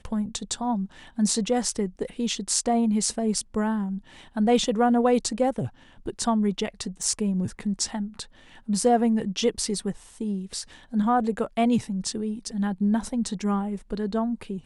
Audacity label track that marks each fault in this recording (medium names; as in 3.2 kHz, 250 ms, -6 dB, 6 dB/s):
7.030000	7.030000	dropout 2.6 ms